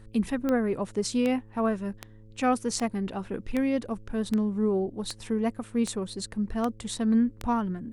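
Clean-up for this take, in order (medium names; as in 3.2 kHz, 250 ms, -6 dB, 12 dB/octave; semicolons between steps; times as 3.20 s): de-click; de-hum 108.2 Hz, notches 5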